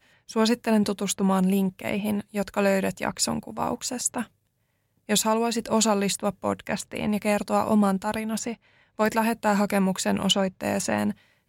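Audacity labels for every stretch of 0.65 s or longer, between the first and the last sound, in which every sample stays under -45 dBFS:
4.260000	5.090000	silence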